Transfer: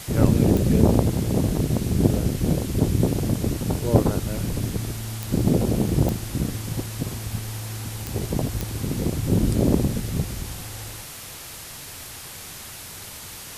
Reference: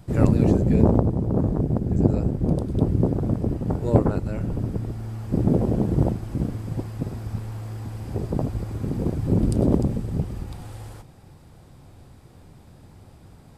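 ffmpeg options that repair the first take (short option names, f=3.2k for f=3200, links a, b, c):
-af "adeclick=t=4,afwtdn=0.014"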